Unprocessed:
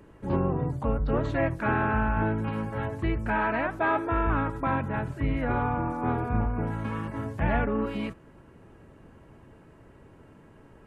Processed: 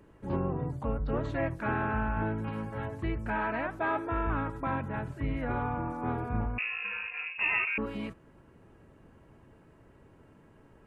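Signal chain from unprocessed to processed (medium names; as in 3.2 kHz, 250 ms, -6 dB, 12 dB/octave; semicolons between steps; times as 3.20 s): 6.58–7.78 s: frequency inversion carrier 2.7 kHz; trim -5 dB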